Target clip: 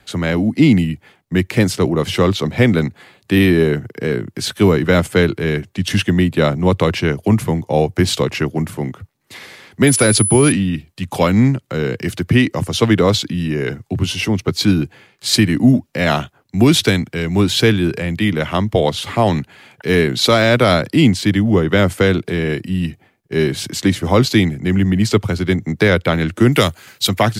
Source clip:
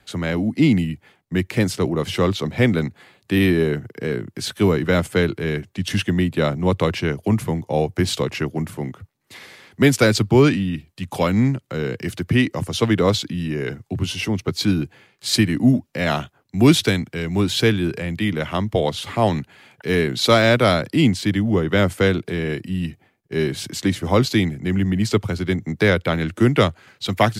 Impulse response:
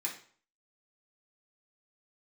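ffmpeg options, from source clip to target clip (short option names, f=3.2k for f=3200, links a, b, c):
-filter_complex "[0:a]asettb=1/sr,asplit=3[a][b][c];[a]atrim=end=9.874[d];[b]atrim=start=9.87:end=10.52,asetpts=PTS-STARTPTS,afade=t=in:d=0.004:c=qsin,afade=t=out:st=0.646:d=0.004:c=qsin,aeval=exprs='val(0)+0.0891*sin(2*PI*10000*n/s)':c=same[e];[c]atrim=start=10.516[f];[d][e]acrossfade=d=0.004:c1=hsin:c2=qsin[g];[g][f]acrossfade=d=0.004:c1=qsin:c2=hsin,asettb=1/sr,asplit=3[h][i][j];[h]atrim=end=26.524[k];[i]atrim=start=26.52:end=27.09,asetpts=PTS-STARTPTS,afade=t=in:d=0.004:c=qsin,afade=t=out:st=0.566:d=0.004:c=qsin,aemphasis=mode=production:type=75fm[l];[j]atrim=start=27.086[m];[k][l]acrossfade=d=0.004:c1=hsin:c2=qsin[n];[n][m]acrossfade=d=0.004:c1=qsin:c2=hsin,alimiter=level_in=6dB:limit=-1dB:release=50:level=0:latency=1,volume=-1dB"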